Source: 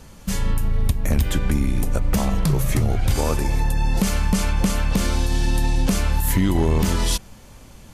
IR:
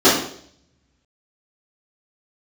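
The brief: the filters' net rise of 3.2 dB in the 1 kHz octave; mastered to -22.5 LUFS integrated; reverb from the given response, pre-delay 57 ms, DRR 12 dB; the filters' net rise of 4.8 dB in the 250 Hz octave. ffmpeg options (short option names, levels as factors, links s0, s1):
-filter_complex "[0:a]equalizer=f=250:t=o:g=6.5,equalizer=f=1000:t=o:g=3.5,asplit=2[s0][s1];[1:a]atrim=start_sample=2205,adelay=57[s2];[s1][s2]afir=irnorm=-1:irlink=0,volume=0.0126[s3];[s0][s3]amix=inputs=2:normalize=0,volume=0.708"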